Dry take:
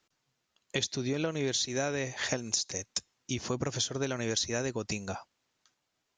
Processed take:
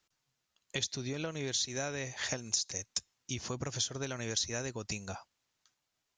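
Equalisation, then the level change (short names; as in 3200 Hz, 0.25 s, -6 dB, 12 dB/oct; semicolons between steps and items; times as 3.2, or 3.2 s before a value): bell 320 Hz -7 dB 2.6 oct; bell 2100 Hz -3 dB 2.9 oct; 0.0 dB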